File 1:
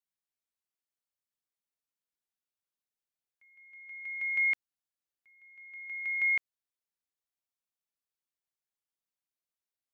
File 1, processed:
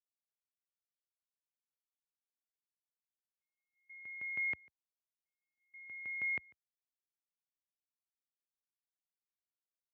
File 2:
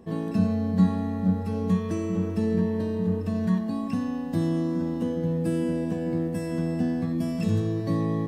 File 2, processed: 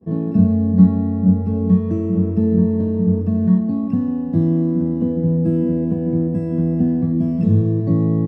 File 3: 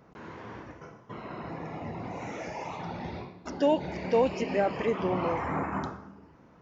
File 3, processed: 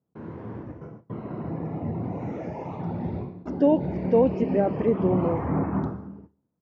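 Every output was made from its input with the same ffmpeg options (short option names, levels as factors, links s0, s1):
-filter_complex "[0:a]lowpass=f=2100:p=1,agate=range=0.0316:threshold=0.00282:ratio=16:detection=peak,highpass=f=73:w=0.5412,highpass=f=73:w=1.3066,tiltshelf=f=670:g=9,asplit=2[s0][s1];[s1]adelay=145.8,volume=0.0501,highshelf=f=4000:g=-3.28[s2];[s0][s2]amix=inputs=2:normalize=0,volume=1.26"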